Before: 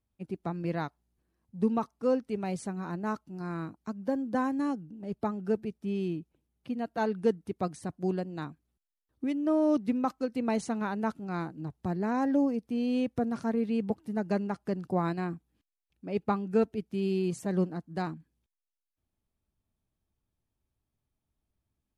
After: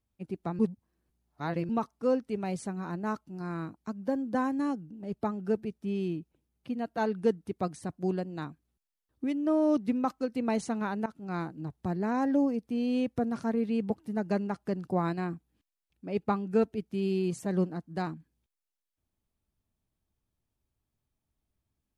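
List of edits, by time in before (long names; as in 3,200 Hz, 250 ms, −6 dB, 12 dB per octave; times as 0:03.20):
0:00.59–0:01.69: reverse
0:11.06–0:11.31: fade in, from −18 dB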